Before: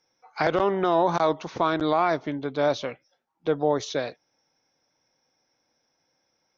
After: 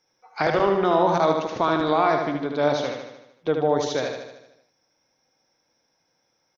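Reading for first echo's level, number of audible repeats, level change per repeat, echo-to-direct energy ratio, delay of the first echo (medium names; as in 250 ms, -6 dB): -5.0 dB, 7, -5.0 dB, -3.5 dB, 76 ms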